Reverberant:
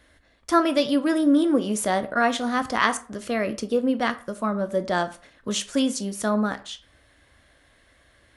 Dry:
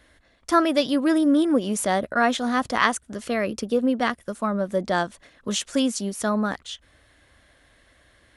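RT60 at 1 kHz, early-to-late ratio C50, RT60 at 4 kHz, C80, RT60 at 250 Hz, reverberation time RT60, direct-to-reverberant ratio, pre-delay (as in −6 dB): 0.40 s, 16.0 dB, 0.30 s, 20.5 dB, 0.40 s, 0.40 s, 10.0 dB, 14 ms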